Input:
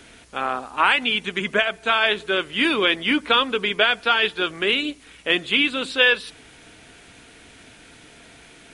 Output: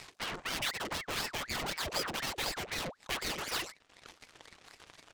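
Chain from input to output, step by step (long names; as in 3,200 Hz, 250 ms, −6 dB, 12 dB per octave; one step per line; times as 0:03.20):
pitch shifter swept by a sawtooth −9 semitones, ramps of 986 ms
half-wave rectification
low-pass filter 8,600 Hz 24 dB per octave
parametric band 2,900 Hz +8 dB 0.78 octaves
mains-hum notches 50/100 Hz
soft clipping −30.5 dBFS, distortion −1 dB
reverb reduction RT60 1.5 s
tempo change 1.7×
harmonic generator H 3 −10 dB, 6 −13 dB, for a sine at −29.5 dBFS
ring modulator whose carrier an LFO sweeps 1,300 Hz, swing 75%, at 4 Hz
level +6 dB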